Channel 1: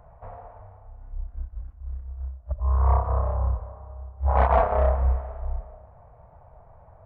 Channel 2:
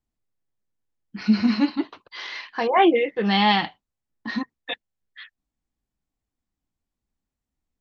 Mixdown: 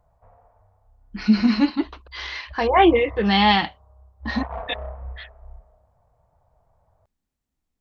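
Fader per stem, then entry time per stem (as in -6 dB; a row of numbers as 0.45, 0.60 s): -13.0, +2.0 dB; 0.00, 0.00 s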